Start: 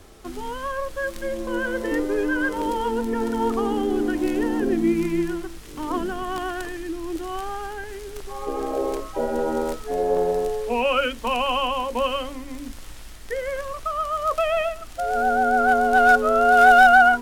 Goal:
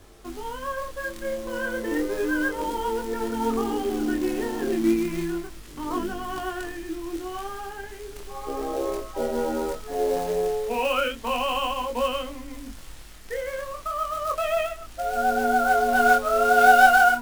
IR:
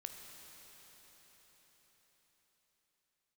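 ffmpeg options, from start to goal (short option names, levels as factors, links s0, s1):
-af "acrusher=bits=4:mode=log:mix=0:aa=0.000001,flanger=delay=20:depth=8:speed=0.33"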